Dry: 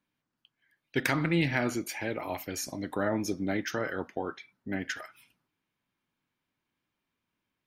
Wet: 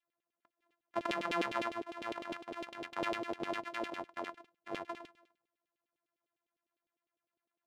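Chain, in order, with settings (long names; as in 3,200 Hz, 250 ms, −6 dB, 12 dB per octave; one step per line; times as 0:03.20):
samples sorted by size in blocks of 128 samples
auto-filter band-pass saw down 9.9 Hz 370–3,400 Hz
level +1 dB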